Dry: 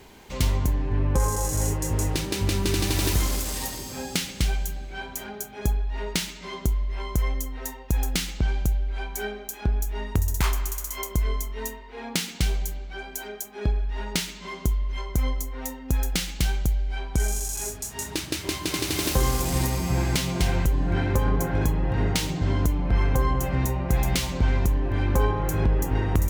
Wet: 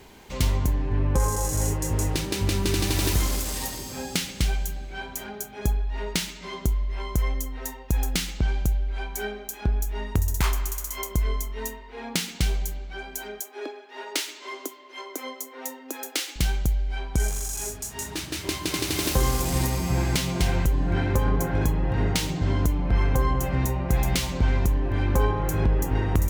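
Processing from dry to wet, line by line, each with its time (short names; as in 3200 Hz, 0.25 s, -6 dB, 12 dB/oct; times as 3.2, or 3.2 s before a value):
13.4–16.36 steep high-pass 270 Hz 72 dB/oct
17.29–18.36 hard clip -25 dBFS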